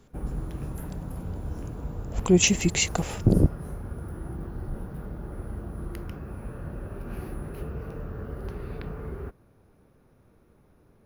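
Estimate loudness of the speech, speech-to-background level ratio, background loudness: -23.0 LUFS, 14.5 dB, -37.5 LUFS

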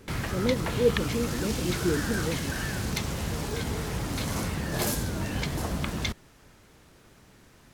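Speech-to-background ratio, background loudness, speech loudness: 0.0 dB, -30.5 LUFS, -30.5 LUFS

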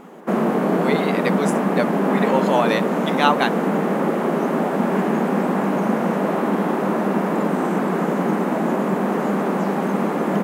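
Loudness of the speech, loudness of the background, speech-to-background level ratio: -24.0 LUFS, -20.5 LUFS, -3.5 dB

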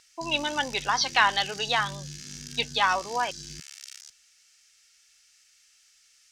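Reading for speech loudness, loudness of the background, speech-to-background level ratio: -26.0 LUFS, -40.0 LUFS, 14.0 dB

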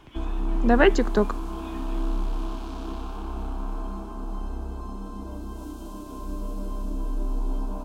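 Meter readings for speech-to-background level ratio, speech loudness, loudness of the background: 11.0 dB, -22.5 LUFS, -33.5 LUFS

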